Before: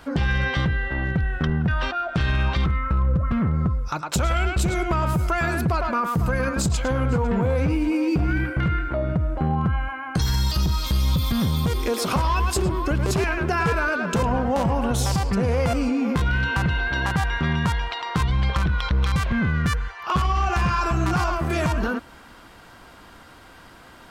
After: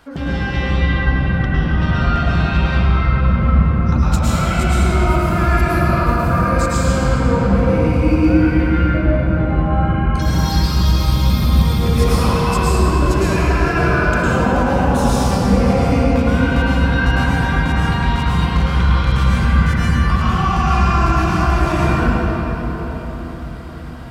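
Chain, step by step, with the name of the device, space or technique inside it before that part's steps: cathedral (reverb RT60 5.1 s, pre-delay 99 ms, DRR -9.5 dB); gain -4 dB

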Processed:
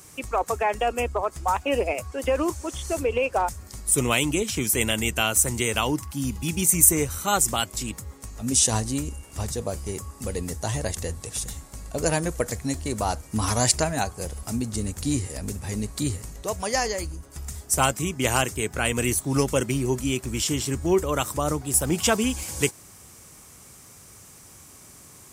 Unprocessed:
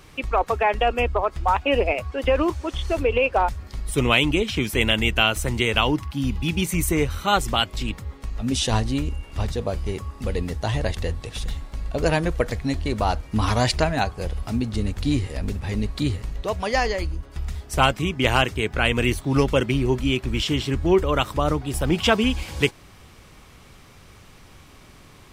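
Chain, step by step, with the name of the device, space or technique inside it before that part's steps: budget condenser microphone (HPF 70 Hz; resonant high shelf 5200 Hz +13.5 dB, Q 1.5); gain -3 dB

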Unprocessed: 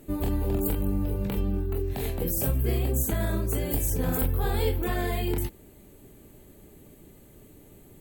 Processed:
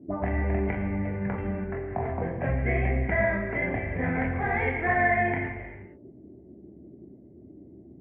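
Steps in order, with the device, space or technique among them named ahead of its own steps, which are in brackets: envelope filter bass rig (envelope low-pass 300–2000 Hz up, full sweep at -23 dBFS; speaker cabinet 70–2200 Hz, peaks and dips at 140 Hz -4 dB, 300 Hz -5 dB, 440 Hz -7 dB, 670 Hz +8 dB, 1300 Hz -8 dB, 2100 Hz +9 dB); non-linear reverb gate 0.5 s falling, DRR 2.5 dB

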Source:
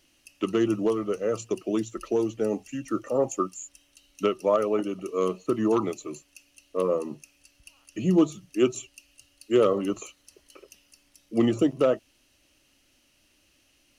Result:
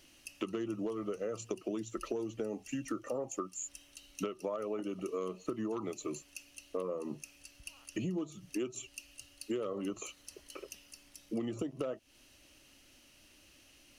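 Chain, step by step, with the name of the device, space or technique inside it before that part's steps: serial compression, leveller first (compressor 2:1, threshold -27 dBFS, peak gain reduction 7 dB; compressor 5:1, threshold -38 dBFS, peak gain reduction 15 dB); gain +3 dB

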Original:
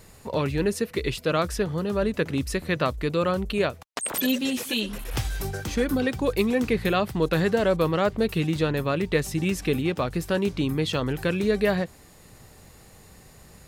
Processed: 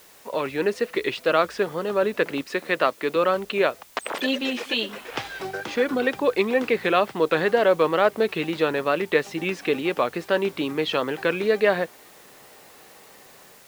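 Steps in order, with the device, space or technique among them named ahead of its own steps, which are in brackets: dictaphone (BPF 390–3300 Hz; AGC gain up to 5.5 dB; wow and flutter; white noise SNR 28 dB); 2.41–3.16 HPF 160 Hz 12 dB/oct

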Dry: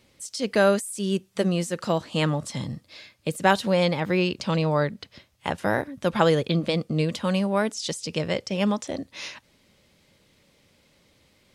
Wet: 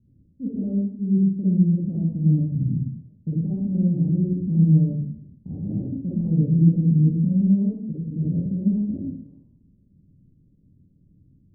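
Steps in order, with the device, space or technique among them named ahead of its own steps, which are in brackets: club heard from the street (limiter -15.5 dBFS, peak gain reduction 10 dB; LPF 210 Hz 24 dB/oct; reverb RT60 0.70 s, pre-delay 39 ms, DRR -7.5 dB); gain +5 dB

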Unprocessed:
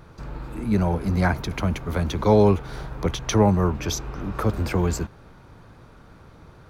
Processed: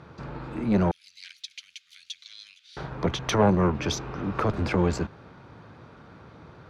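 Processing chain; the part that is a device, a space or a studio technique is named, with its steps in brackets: valve radio (BPF 98–4600 Hz; tube stage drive 14 dB, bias 0.6; core saturation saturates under 330 Hz); 0.91–2.77 inverse Chebyshev high-pass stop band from 950 Hz, stop band 60 dB; gain +4.5 dB

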